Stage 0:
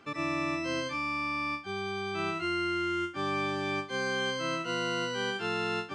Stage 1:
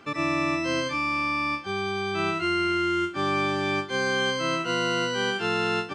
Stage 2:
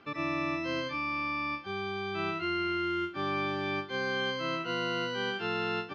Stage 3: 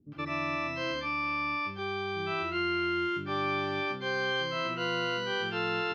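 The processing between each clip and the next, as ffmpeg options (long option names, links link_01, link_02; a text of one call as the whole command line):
ffmpeg -i in.wav -af "aecho=1:1:418|836|1254:0.0668|0.0354|0.0188,volume=6dB" out.wav
ffmpeg -i in.wav -af "lowpass=frequency=4900:width=0.5412,lowpass=frequency=4900:width=1.3066,volume=-6.5dB" out.wav
ffmpeg -i in.wav -filter_complex "[0:a]acrossover=split=280[link_01][link_02];[link_02]adelay=120[link_03];[link_01][link_03]amix=inputs=2:normalize=0,volume=1.5dB" out.wav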